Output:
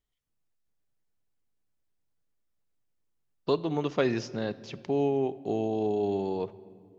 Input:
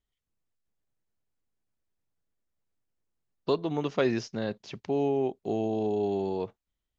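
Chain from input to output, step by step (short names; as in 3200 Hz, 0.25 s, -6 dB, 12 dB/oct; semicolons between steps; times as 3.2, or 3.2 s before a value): shoebox room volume 3600 m³, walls mixed, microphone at 0.4 m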